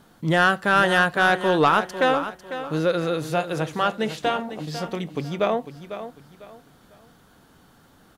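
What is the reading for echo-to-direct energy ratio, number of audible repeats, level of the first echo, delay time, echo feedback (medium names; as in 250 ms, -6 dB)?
-11.0 dB, 3, -11.5 dB, 499 ms, 29%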